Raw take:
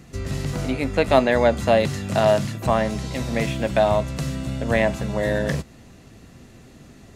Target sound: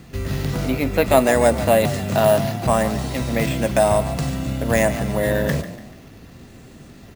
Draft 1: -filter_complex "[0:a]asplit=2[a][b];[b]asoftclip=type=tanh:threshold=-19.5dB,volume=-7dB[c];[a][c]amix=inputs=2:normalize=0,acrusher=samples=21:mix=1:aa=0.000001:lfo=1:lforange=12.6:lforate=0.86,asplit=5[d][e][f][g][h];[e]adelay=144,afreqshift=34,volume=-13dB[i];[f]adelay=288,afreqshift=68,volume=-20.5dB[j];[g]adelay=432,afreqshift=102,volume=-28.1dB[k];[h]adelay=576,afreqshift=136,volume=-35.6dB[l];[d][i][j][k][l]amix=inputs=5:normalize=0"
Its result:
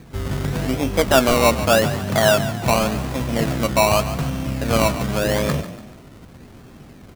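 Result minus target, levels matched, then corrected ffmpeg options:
decimation with a swept rate: distortion +15 dB
-filter_complex "[0:a]asplit=2[a][b];[b]asoftclip=type=tanh:threshold=-19.5dB,volume=-7dB[c];[a][c]amix=inputs=2:normalize=0,acrusher=samples=4:mix=1:aa=0.000001:lfo=1:lforange=2.4:lforate=0.86,asplit=5[d][e][f][g][h];[e]adelay=144,afreqshift=34,volume=-13dB[i];[f]adelay=288,afreqshift=68,volume=-20.5dB[j];[g]adelay=432,afreqshift=102,volume=-28.1dB[k];[h]adelay=576,afreqshift=136,volume=-35.6dB[l];[d][i][j][k][l]amix=inputs=5:normalize=0"

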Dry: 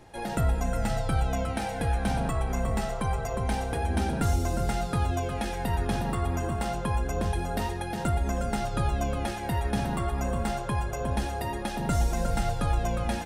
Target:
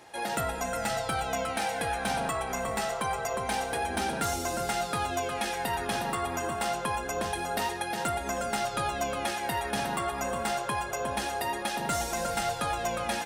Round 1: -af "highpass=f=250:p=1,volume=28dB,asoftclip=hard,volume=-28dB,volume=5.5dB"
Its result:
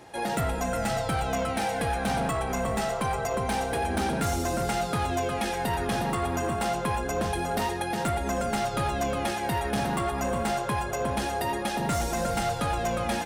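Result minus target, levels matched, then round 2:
250 Hz band +4.0 dB
-af "highpass=f=800:p=1,volume=28dB,asoftclip=hard,volume=-28dB,volume=5.5dB"

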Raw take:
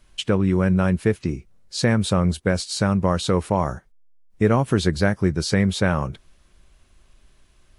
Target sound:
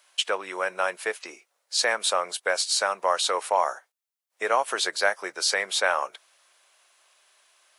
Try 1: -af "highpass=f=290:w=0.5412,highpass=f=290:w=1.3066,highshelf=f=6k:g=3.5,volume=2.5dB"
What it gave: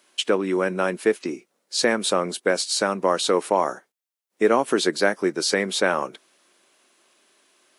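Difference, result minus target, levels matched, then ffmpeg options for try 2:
250 Hz band +17.5 dB
-af "highpass=f=610:w=0.5412,highpass=f=610:w=1.3066,highshelf=f=6k:g=3.5,volume=2.5dB"

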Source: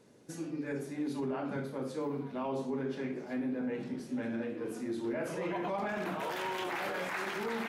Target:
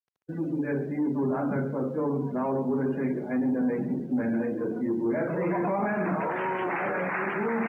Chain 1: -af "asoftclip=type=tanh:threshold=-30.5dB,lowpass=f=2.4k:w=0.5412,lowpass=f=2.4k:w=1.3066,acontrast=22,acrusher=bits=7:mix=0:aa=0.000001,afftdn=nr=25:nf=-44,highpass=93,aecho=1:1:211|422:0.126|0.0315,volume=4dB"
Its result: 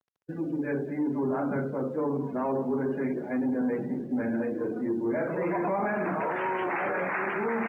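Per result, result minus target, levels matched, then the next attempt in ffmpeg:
echo 74 ms late; 125 Hz band -3.0 dB
-af "asoftclip=type=tanh:threshold=-30.5dB,lowpass=f=2.4k:w=0.5412,lowpass=f=2.4k:w=1.3066,acontrast=22,acrusher=bits=7:mix=0:aa=0.000001,afftdn=nr=25:nf=-44,highpass=93,aecho=1:1:137|274:0.126|0.0315,volume=4dB"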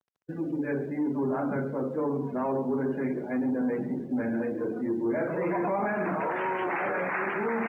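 125 Hz band -2.5 dB
-af "asoftclip=type=tanh:threshold=-30.5dB,lowpass=f=2.4k:w=0.5412,lowpass=f=2.4k:w=1.3066,adynamicequalizer=threshold=0.00178:dfrequency=170:dqfactor=1.5:tfrequency=170:tqfactor=1.5:attack=5:release=100:ratio=0.375:range=2.5:mode=boostabove:tftype=bell,acontrast=22,acrusher=bits=7:mix=0:aa=0.000001,afftdn=nr=25:nf=-44,highpass=93,aecho=1:1:137|274:0.126|0.0315,volume=4dB"

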